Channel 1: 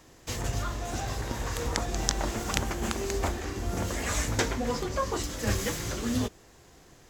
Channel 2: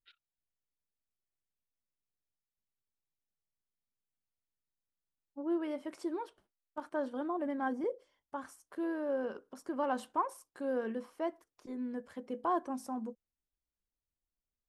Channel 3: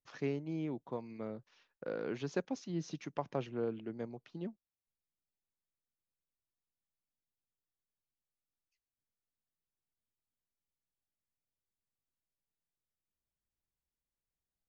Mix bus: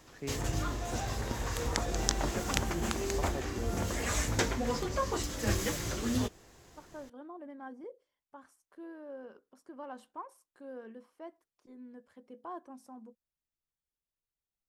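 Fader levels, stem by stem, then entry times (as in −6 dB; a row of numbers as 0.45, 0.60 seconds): −2.5, −11.0, −4.5 decibels; 0.00, 0.00, 0.00 seconds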